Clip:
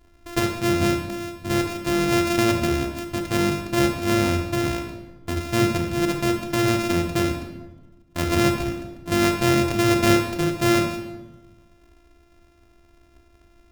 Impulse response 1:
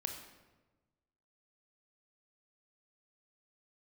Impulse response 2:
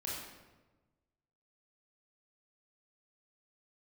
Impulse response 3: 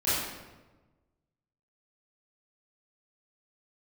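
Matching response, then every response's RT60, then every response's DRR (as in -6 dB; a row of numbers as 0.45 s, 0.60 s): 1; 1.2 s, 1.2 s, 1.2 s; 3.5 dB, -6.0 dB, -14.0 dB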